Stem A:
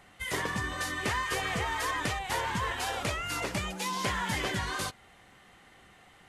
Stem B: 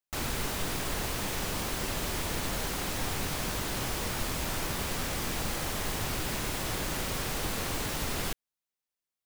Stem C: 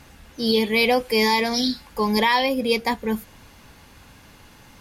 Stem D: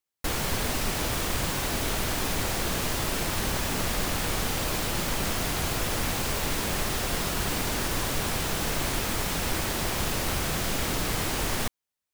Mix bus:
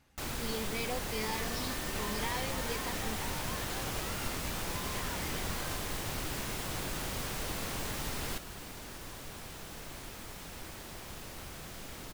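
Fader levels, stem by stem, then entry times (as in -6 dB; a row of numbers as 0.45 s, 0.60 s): -12.5 dB, -5.0 dB, -19.5 dB, -17.0 dB; 0.90 s, 0.05 s, 0.00 s, 1.10 s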